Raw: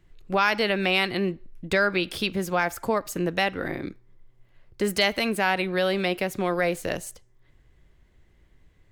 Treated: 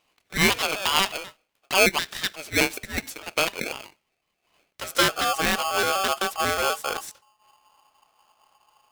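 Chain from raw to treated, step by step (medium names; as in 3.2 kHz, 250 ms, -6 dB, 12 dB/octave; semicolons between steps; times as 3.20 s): pitch shift switched off and on -3.5 st, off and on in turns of 124 ms; high-pass sweep 1.3 kHz -> 110 Hz, 4.73–5.33 s; polarity switched at an audio rate 960 Hz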